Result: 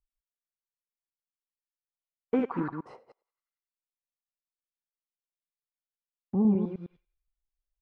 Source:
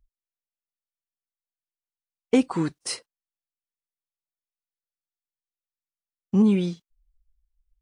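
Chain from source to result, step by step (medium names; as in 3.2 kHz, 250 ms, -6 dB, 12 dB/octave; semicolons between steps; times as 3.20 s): chunks repeated in reverse 104 ms, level -4.5 dB; thinning echo 93 ms, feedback 55%, high-pass 740 Hz, level -18.5 dB; LFO low-pass sine 0.89 Hz 760–1600 Hz; gate -47 dBFS, range -10 dB; trim -8 dB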